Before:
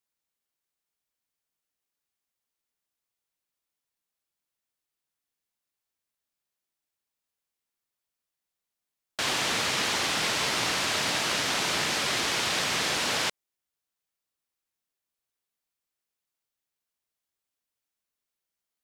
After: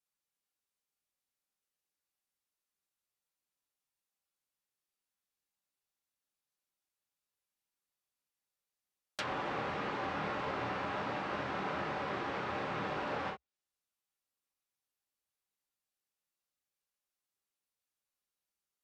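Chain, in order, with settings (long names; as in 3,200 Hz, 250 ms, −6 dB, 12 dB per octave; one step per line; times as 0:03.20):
parametric band 65 Hz −6.5 dB 0.23 octaves
reverb whose tail is shaped and stops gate 80 ms flat, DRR −1 dB
treble cut that deepens with the level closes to 1,300 Hz, closed at −24 dBFS
level −7.5 dB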